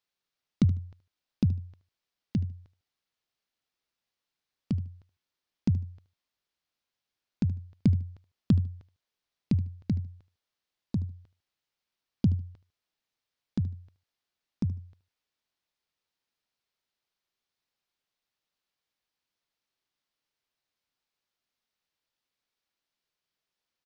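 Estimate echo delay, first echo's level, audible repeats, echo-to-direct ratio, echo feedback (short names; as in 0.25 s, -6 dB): 75 ms, -17.0 dB, 2, -17.0 dB, 22%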